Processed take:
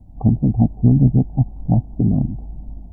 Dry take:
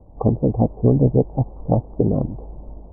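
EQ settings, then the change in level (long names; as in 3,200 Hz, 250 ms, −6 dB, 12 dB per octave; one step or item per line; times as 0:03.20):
drawn EQ curve 250 Hz 0 dB, 500 Hz −22 dB, 730 Hz −7 dB, 1,200 Hz −20 dB, 1,800 Hz +6 dB
+4.0 dB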